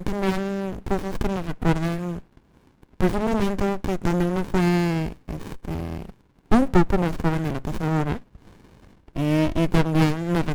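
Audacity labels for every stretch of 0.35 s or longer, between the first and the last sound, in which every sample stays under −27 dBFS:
2.180000	3.010000	silence
6.050000	6.510000	silence
8.170000	9.160000	silence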